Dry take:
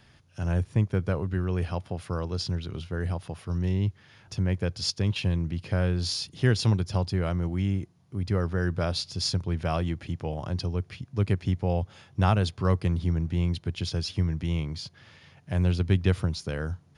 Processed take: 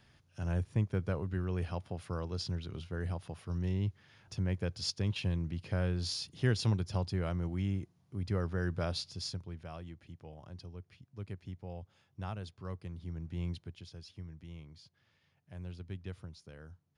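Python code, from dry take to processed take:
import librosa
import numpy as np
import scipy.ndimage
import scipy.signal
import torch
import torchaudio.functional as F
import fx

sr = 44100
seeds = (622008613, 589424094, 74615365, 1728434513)

y = fx.gain(x, sr, db=fx.line((8.96, -7.0), (9.68, -18.0), (12.93, -18.0), (13.5, -10.0), (13.86, -20.0)))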